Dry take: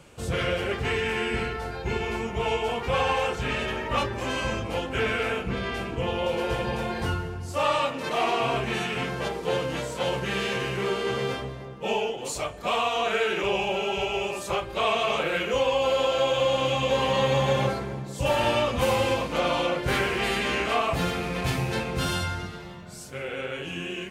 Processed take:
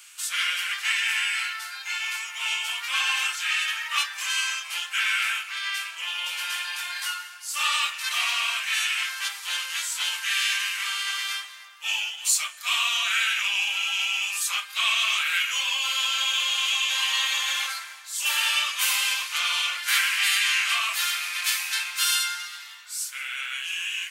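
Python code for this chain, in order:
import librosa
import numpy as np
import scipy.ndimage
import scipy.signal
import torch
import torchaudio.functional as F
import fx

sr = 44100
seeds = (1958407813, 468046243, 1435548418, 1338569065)

y = scipy.signal.sosfilt(scipy.signal.butter(4, 1300.0, 'highpass', fs=sr, output='sos'), x)
y = fx.tilt_eq(y, sr, slope=4.0)
y = y * 10.0 ** (1.5 / 20.0)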